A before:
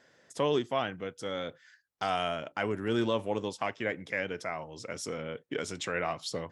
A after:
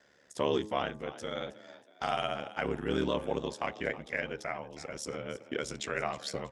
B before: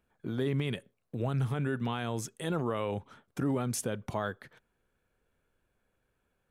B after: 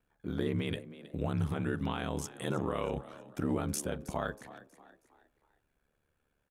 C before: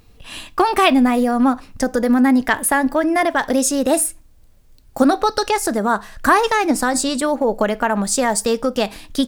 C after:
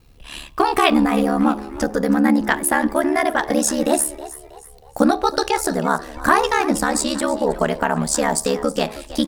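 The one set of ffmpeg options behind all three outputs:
-filter_complex "[0:a]aeval=exprs='val(0)*sin(2*PI*36*n/s)':channel_layout=same,bandreject=frequency=106.3:width_type=h:width=4,bandreject=frequency=212.6:width_type=h:width=4,bandreject=frequency=318.9:width_type=h:width=4,bandreject=frequency=425.2:width_type=h:width=4,bandreject=frequency=531.5:width_type=h:width=4,bandreject=frequency=637.8:width_type=h:width=4,bandreject=frequency=744.1:width_type=h:width=4,bandreject=frequency=850.4:width_type=h:width=4,bandreject=frequency=956.7:width_type=h:width=4,bandreject=frequency=1063:width_type=h:width=4,bandreject=frequency=1169.3:width_type=h:width=4,asplit=5[link_01][link_02][link_03][link_04][link_05];[link_02]adelay=319,afreqshift=61,volume=-16.5dB[link_06];[link_03]adelay=638,afreqshift=122,volume=-24.2dB[link_07];[link_04]adelay=957,afreqshift=183,volume=-32dB[link_08];[link_05]adelay=1276,afreqshift=244,volume=-39.7dB[link_09];[link_01][link_06][link_07][link_08][link_09]amix=inputs=5:normalize=0,volume=1.5dB"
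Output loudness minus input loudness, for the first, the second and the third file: −1.5, −2.0, −1.5 LU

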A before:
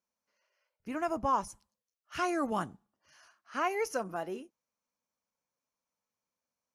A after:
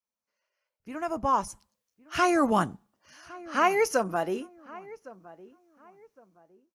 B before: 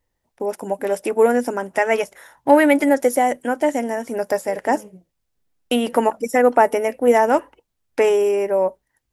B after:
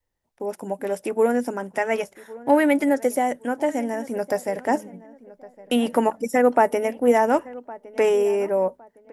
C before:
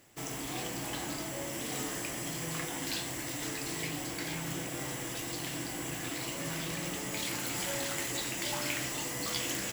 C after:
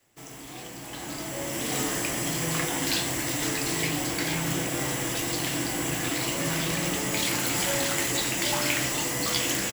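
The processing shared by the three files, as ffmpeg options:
-filter_complex "[0:a]adynamicequalizer=threshold=0.02:dfrequency=180:dqfactor=1.1:tfrequency=180:tqfactor=1.1:attack=5:release=100:ratio=0.375:range=2.5:mode=boostabove:tftype=bell,dynaudnorm=framelen=880:gausssize=3:maxgain=14.5dB,asplit=2[link_01][link_02];[link_02]adelay=1111,lowpass=frequency=1500:poles=1,volume=-19dB,asplit=2[link_03][link_04];[link_04]adelay=1111,lowpass=frequency=1500:poles=1,volume=0.31,asplit=2[link_05][link_06];[link_06]adelay=1111,lowpass=frequency=1500:poles=1,volume=0.31[link_07];[link_03][link_05][link_07]amix=inputs=3:normalize=0[link_08];[link_01][link_08]amix=inputs=2:normalize=0,volume=-5.5dB"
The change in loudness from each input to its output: +7.5, −3.5, +8.5 LU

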